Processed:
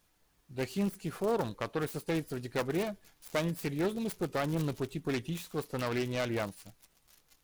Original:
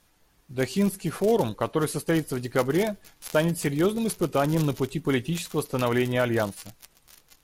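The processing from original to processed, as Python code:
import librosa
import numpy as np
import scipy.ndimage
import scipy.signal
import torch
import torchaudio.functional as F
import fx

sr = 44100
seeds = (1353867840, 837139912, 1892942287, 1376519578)

y = fx.self_delay(x, sr, depth_ms=0.28)
y = fx.quant_dither(y, sr, seeds[0], bits=12, dither='triangular')
y = F.gain(torch.from_numpy(y), -8.0).numpy()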